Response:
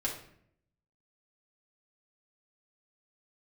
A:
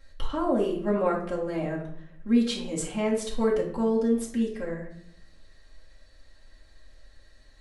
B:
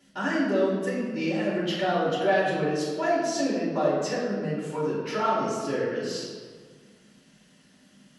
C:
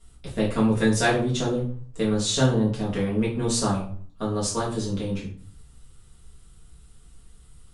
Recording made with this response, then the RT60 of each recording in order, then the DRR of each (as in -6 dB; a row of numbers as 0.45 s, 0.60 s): A; 0.65 s, 1.7 s, 0.50 s; -5.5 dB, -8.5 dB, -8.0 dB